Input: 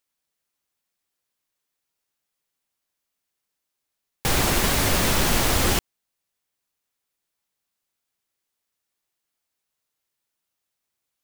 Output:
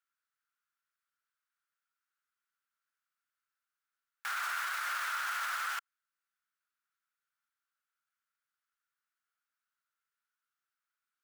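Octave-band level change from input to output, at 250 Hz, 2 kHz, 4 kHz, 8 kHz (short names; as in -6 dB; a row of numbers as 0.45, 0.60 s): under -40 dB, -7.5 dB, -17.5 dB, -20.0 dB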